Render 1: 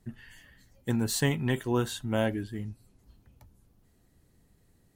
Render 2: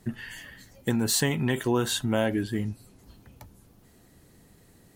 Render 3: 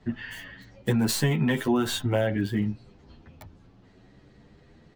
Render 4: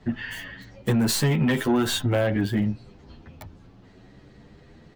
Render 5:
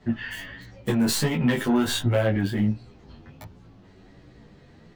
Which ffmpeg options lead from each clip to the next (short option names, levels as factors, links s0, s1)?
-filter_complex "[0:a]asplit=2[s0][s1];[s1]alimiter=level_in=1.12:limit=0.0631:level=0:latency=1:release=31,volume=0.891,volume=0.841[s2];[s0][s2]amix=inputs=2:normalize=0,acompressor=threshold=0.0355:ratio=2.5,lowshelf=f=90:g=-11,volume=2.11"
-filter_complex "[0:a]acrossover=split=330[s0][s1];[s1]acompressor=threshold=0.0501:ratio=10[s2];[s0][s2]amix=inputs=2:normalize=0,acrossover=split=4900[s3][s4];[s4]acrusher=bits=5:dc=4:mix=0:aa=0.000001[s5];[s3][s5]amix=inputs=2:normalize=0,asplit=2[s6][s7];[s7]adelay=9.3,afreqshift=0.59[s8];[s6][s8]amix=inputs=2:normalize=1,volume=1.88"
-af "asoftclip=type=tanh:threshold=0.106,volume=1.68"
-af "flanger=delay=16.5:depth=4.8:speed=1.4,volume=1.33"